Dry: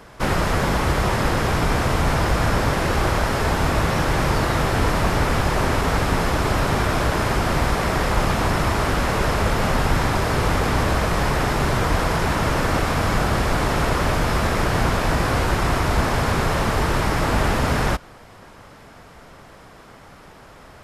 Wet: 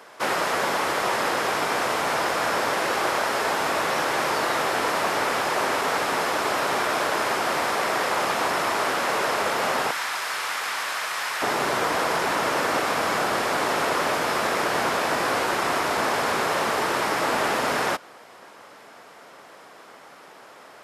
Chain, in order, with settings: high-pass 440 Hz 12 dB/octave, from 9.91 s 1.3 kHz, from 11.42 s 370 Hz

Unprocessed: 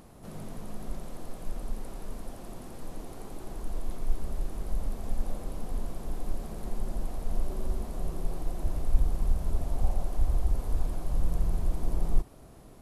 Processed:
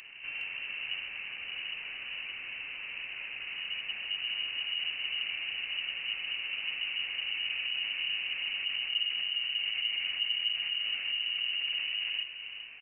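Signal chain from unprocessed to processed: high-pass 51 Hz 24 dB/octave; in parallel at +0.5 dB: compressor with a negative ratio -38 dBFS, ratio -0.5; on the sum: frequency inversion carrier 2.9 kHz; delay 413 ms -10.5 dB; trim -3.5 dB

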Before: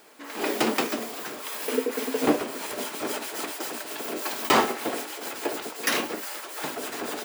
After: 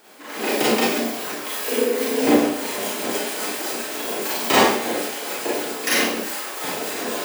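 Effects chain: dynamic bell 1.2 kHz, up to -5 dB, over -42 dBFS, Q 2.1; Schroeder reverb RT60 0.54 s, combs from 30 ms, DRR -6 dB

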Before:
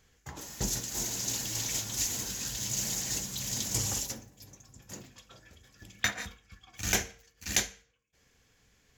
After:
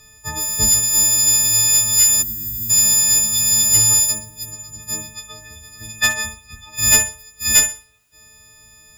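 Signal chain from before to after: partials quantised in pitch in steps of 6 st; bass shelf 130 Hz +8.5 dB; in parallel at +2 dB: compression 5:1, threshold -31 dBFS, peak gain reduction 18 dB; on the sum: one-sided clip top -11.5 dBFS; bit crusher 11-bit; on a send: flutter echo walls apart 10.7 m, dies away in 0.34 s; on the sum: time-frequency box 2.22–2.70 s, 410–10000 Hz -21 dB; trim +2.5 dB

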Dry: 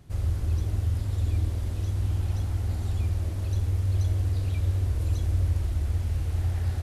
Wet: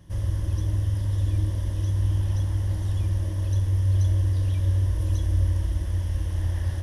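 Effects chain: rippled EQ curve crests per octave 1.2, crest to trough 10 dB

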